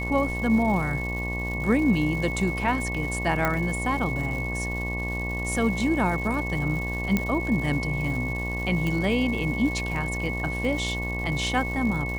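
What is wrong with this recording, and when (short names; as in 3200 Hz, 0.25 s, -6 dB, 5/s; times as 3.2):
buzz 60 Hz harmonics 19 -31 dBFS
crackle 300/s -34 dBFS
tone 2200 Hz -31 dBFS
3.45 pop -10 dBFS
7.17 pop -10 dBFS
8.87 pop -16 dBFS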